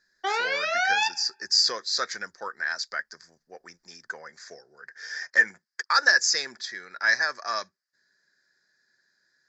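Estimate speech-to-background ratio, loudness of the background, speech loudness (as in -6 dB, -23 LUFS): 0.5 dB, -25.5 LUFS, -25.0 LUFS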